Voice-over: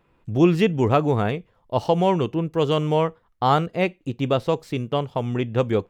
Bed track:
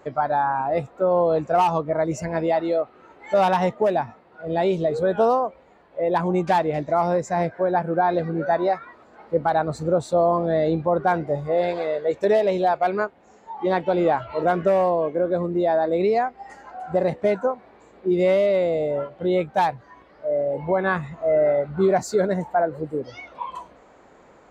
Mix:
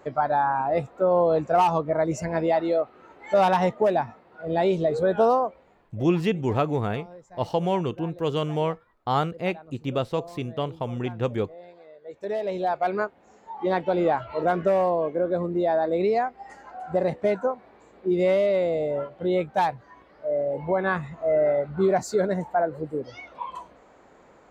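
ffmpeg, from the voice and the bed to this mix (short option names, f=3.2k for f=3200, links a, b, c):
-filter_complex "[0:a]adelay=5650,volume=-5dB[a];[1:a]volume=20dB,afade=t=out:st=5.42:d=0.64:silence=0.0749894,afade=t=in:st=12:d=0.95:silence=0.0891251[b];[a][b]amix=inputs=2:normalize=0"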